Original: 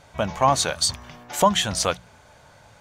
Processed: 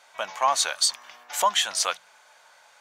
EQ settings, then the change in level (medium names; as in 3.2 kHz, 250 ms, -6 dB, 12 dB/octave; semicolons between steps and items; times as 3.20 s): high-pass 920 Hz 12 dB/octave; 0.0 dB